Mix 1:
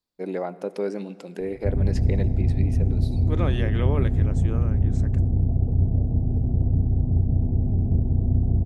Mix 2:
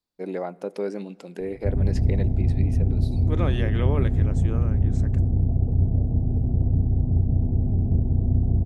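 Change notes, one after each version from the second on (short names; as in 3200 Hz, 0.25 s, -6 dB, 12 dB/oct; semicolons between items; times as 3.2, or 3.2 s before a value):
first voice: send -8.0 dB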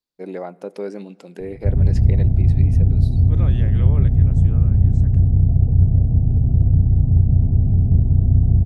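second voice -6.5 dB; background: add resonant low shelf 200 Hz +6 dB, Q 1.5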